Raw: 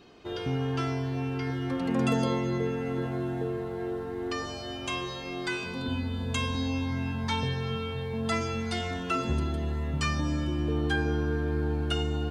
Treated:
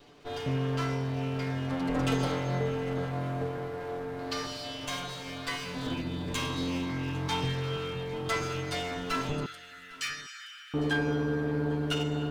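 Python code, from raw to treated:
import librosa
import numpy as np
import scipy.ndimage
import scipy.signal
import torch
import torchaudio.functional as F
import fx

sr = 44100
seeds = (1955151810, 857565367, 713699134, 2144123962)

p1 = fx.lower_of_two(x, sr, delay_ms=6.9)
p2 = fx.peak_eq(p1, sr, hz=4400.0, db=8.0, octaves=0.38, at=(4.19, 4.85))
p3 = fx.steep_highpass(p2, sr, hz=1300.0, slope=96, at=(9.46, 10.74))
y = p3 + fx.echo_single(p3, sr, ms=804, db=-21.5, dry=0)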